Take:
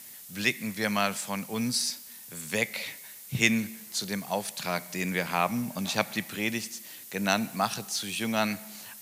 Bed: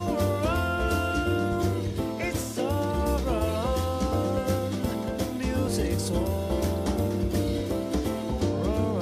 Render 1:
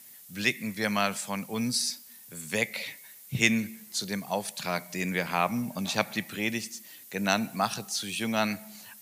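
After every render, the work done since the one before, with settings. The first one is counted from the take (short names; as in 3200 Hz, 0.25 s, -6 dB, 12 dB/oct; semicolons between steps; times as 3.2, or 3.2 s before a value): denoiser 6 dB, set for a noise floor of -47 dBFS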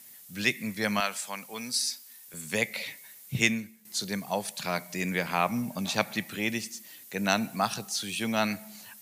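1–2.34 HPF 800 Hz 6 dB/oct; 3.42–3.85 fade out quadratic, to -13.5 dB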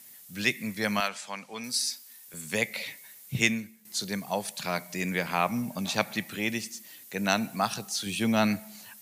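1.08–1.64 LPF 5900 Hz; 8.06–8.6 low shelf 410 Hz +7 dB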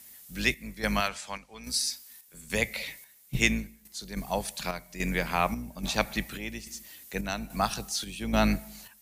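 octaver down 2 oct, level -3 dB; chopper 1.2 Hz, depth 60%, duty 65%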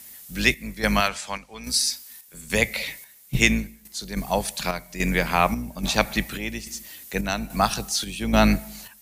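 gain +6.5 dB; limiter -2 dBFS, peak gain reduction 1.5 dB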